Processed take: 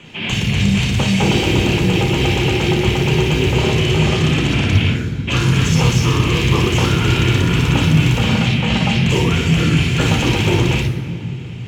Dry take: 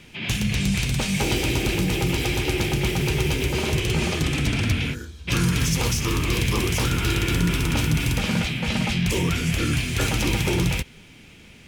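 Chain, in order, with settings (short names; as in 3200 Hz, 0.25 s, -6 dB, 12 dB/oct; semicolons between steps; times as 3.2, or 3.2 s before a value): in parallel at -4 dB: soft clip -23 dBFS, distortion -11 dB; on the sum: reverb RT60 2.7 s, pre-delay 29 ms, DRR 4 dB; gain -4 dB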